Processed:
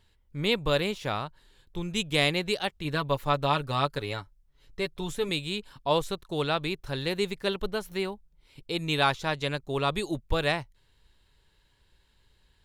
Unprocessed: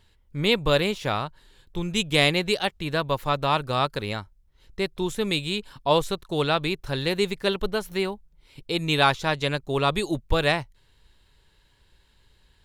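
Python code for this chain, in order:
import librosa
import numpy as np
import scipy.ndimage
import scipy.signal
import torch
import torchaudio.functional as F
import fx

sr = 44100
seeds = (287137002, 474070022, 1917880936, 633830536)

y = fx.comb(x, sr, ms=7.0, depth=0.55, at=(2.84, 5.29))
y = F.gain(torch.from_numpy(y), -4.5).numpy()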